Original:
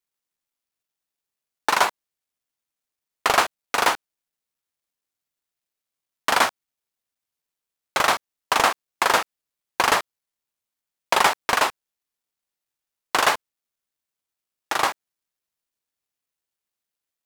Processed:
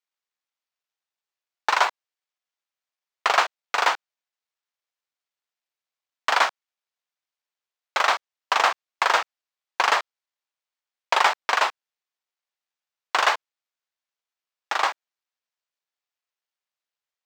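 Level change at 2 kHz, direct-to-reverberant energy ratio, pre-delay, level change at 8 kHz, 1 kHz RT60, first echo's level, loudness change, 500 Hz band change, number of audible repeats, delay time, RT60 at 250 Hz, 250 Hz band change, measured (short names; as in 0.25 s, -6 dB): -0.5 dB, none, none, -7.0 dB, none, none, -1.0 dB, -3.5 dB, none, none, none, -12.0 dB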